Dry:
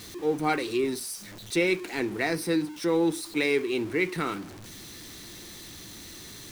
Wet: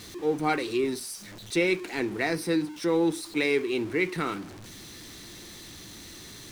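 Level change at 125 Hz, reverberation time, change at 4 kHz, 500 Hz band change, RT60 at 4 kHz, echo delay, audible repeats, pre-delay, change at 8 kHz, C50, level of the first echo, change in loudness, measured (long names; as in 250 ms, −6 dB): 0.0 dB, no reverb audible, −0.5 dB, 0.0 dB, no reverb audible, no echo audible, no echo audible, no reverb audible, −1.5 dB, no reverb audible, no echo audible, 0.0 dB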